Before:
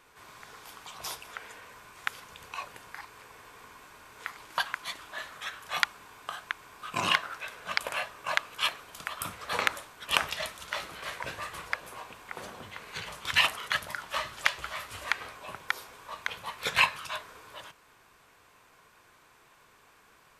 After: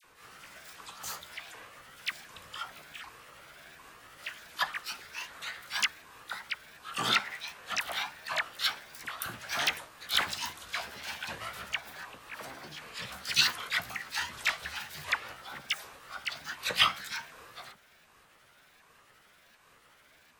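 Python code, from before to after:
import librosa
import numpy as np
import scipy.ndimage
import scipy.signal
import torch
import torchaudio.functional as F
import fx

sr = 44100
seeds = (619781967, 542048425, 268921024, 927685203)

y = fx.pitch_ramps(x, sr, semitones=8.5, every_ms=752)
y = fx.dispersion(y, sr, late='lows', ms=45.0, hz=1500.0)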